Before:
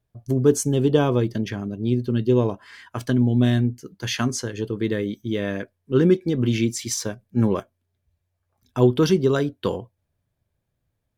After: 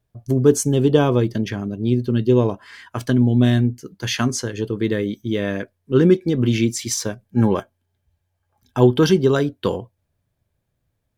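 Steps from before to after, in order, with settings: 7.25–9.35 small resonant body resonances 840/1600/3100 Hz, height 9 dB; gain +3 dB

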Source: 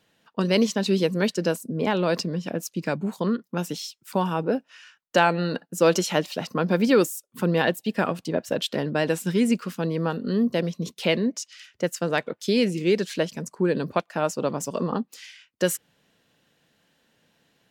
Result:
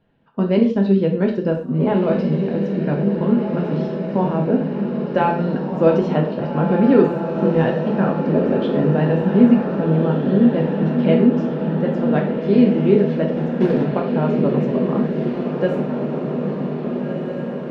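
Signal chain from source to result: tilt -3 dB/oct; 13.31–13.84 short-mantissa float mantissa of 2-bit; air absorption 320 m; diffused feedback echo 1.654 s, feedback 65%, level -5 dB; non-linear reverb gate 0.16 s falling, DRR 0.5 dB; gain -1 dB

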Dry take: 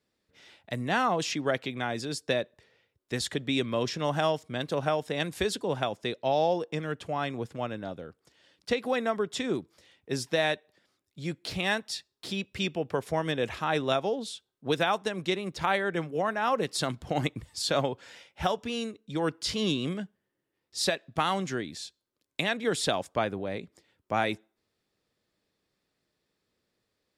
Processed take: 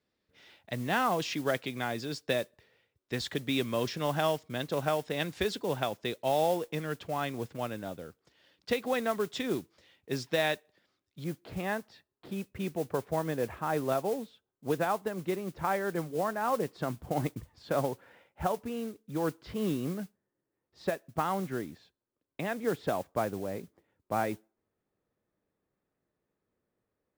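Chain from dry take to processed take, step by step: LPF 5300 Hz 12 dB/oct, from 11.24 s 1400 Hz; modulation noise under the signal 19 dB; gain -2 dB

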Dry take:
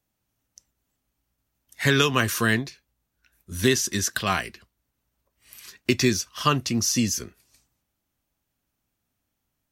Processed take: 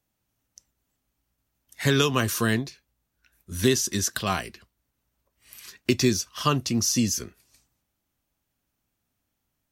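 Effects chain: dynamic EQ 1900 Hz, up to -6 dB, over -37 dBFS, Q 1.1

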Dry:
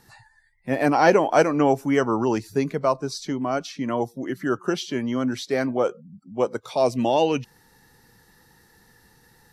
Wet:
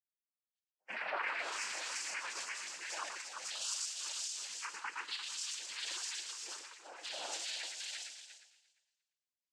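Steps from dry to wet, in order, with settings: spectral delay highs late, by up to 0.814 s; Chebyshev high-pass 3000 Hz, order 2; tilt +2 dB/oct; expander -48 dBFS; level quantiser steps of 9 dB; bell 3200 Hz -4.5 dB 0.48 oct; multi-head echo 0.116 s, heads first and third, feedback 49%, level -6 dB; limiter -37.5 dBFS, peak gain reduction 12.5 dB; noise vocoder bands 8; flange 1 Hz, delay 2.3 ms, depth 9 ms, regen -49%; three-band expander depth 100%; gain +10 dB

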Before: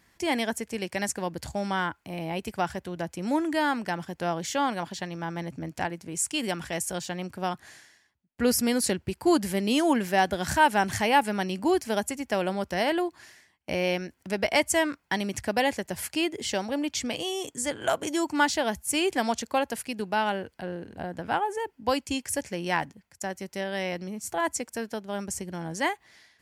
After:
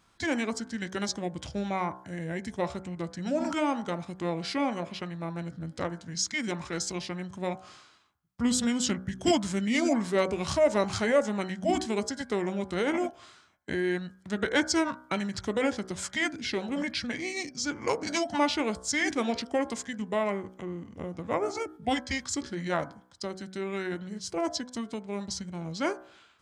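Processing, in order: de-hum 62.71 Hz, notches 38; formant shift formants -6 st; gain -1.5 dB

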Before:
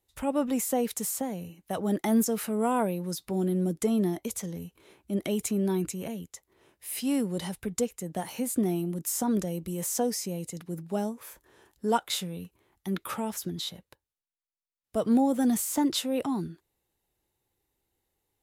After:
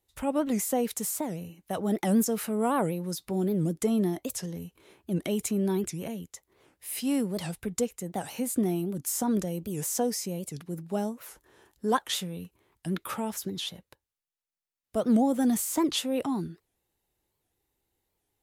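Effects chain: record warp 78 rpm, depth 250 cents

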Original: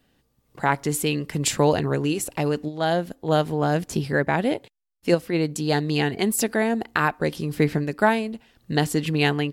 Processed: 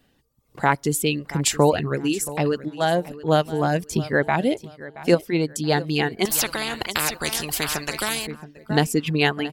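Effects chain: reverb removal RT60 1.2 s; feedback echo 0.675 s, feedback 29%, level -17 dB; 6.25–8.27 spectral compressor 4:1; gain +2.5 dB

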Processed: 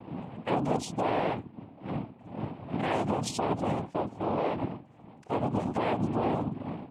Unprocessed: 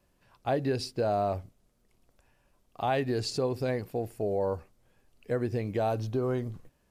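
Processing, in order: wind noise 250 Hz -40 dBFS; treble ducked by the level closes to 2500 Hz, closed at -25 dBFS; limiter -25 dBFS, peak gain reduction 6.5 dB; loudest bins only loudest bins 64; noise vocoder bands 4; gain +4 dB

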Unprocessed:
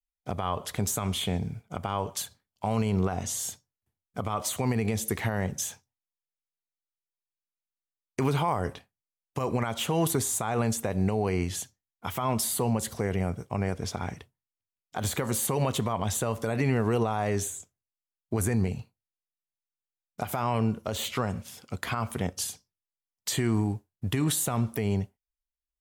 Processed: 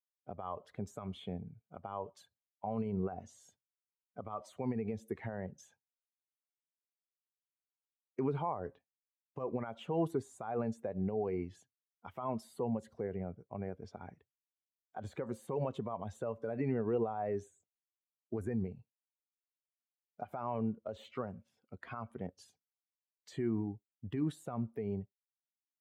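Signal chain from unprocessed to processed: per-bin expansion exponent 1.5; band-pass 410 Hz, Q 0.72; gain -3 dB

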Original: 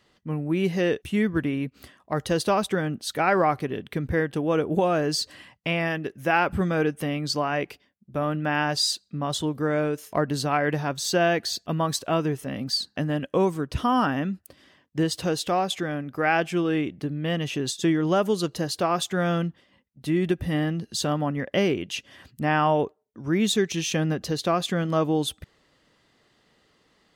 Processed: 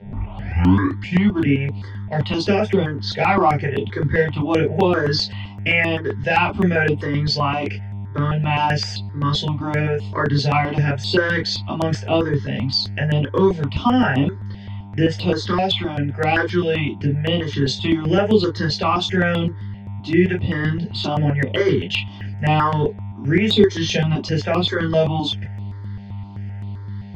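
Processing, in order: tape start at the beginning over 1.31 s; bell 3900 Hz +12 dB 2.3 oct; in parallel at -9 dB: hard clip -14 dBFS, distortion -14 dB; on the sum: buzz 100 Hz, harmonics 37, -36 dBFS -8 dB/oct; soft clip -3 dBFS, distortion -27 dB; air absorption 170 m; reverb, pre-delay 3 ms, DRR -3 dB; step phaser 7.7 Hz 310–5900 Hz; gain -8 dB

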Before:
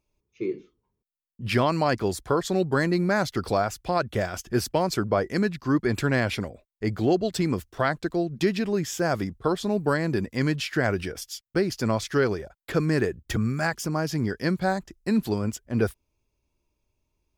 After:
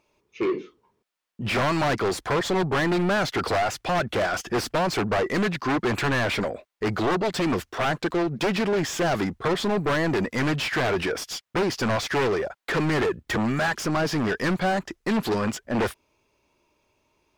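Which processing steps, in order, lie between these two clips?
one-sided fold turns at -19.5 dBFS; overdrive pedal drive 28 dB, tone 2100 Hz, clips at -12 dBFS; gain -3.5 dB

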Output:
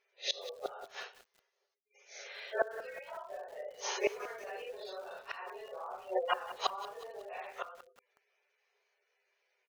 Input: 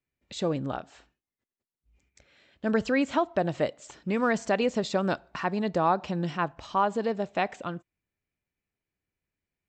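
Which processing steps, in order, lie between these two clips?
phase scrambler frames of 0.2 s; notches 50/100/150/200/250/300/350/400/450/500 Hz; early reflections 12 ms -9.5 dB, 27 ms -17 dB; spectral gate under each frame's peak -25 dB strong; dynamic EQ 3700 Hz, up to +3 dB, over -47 dBFS, Q 0.97; compressor 6:1, threshold -29 dBFS, peak gain reduction 10 dB; FFT band-pass 370–6700 Hz; flipped gate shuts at -31 dBFS, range -25 dB; reverb RT60 0.20 s, pre-delay 60 ms, DRR 31 dB; lo-fi delay 0.183 s, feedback 55%, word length 10-bit, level -14 dB; gain +14 dB

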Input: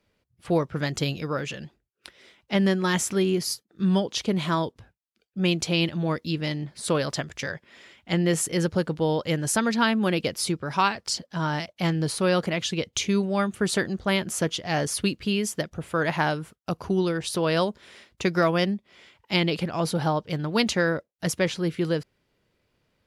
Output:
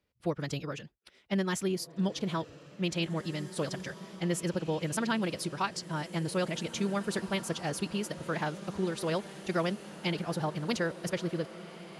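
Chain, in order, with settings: time stretch by phase-locked vocoder 0.52×; diffused feedback echo 1.897 s, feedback 48%, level -13 dB; gain -7 dB

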